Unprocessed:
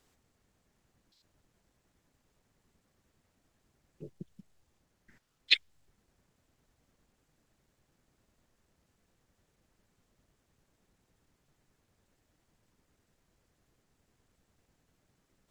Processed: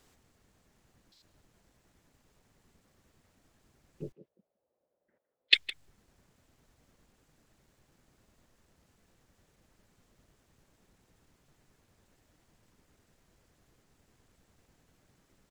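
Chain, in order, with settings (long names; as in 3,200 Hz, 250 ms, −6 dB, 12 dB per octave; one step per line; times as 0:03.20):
0:04.12–0:05.53: resonant band-pass 550 Hz, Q 4.7
far-end echo of a speakerphone 160 ms, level −14 dB
level +5.5 dB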